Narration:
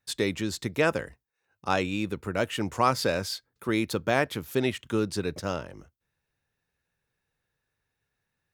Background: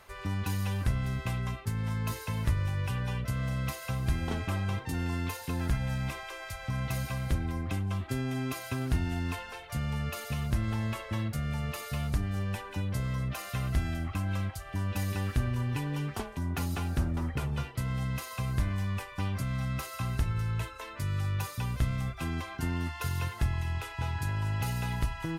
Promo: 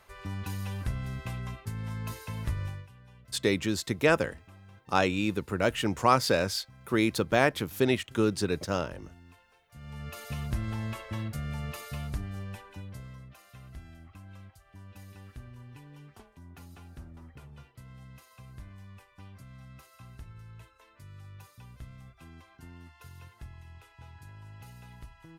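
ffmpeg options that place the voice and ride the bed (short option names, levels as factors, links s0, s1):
-filter_complex "[0:a]adelay=3250,volume=1.12[s0];[1:a]volume=5.62,afade=t=out:st=2.66:d=0.21:silence=0.133352,afade=t=in:st=9.71:d=0.62:silence=0.112202,afade=t=out:st=11.73:d=1.56:silence=0.188365[s1];[s0][s1]amix=inputs=2:normalize=0"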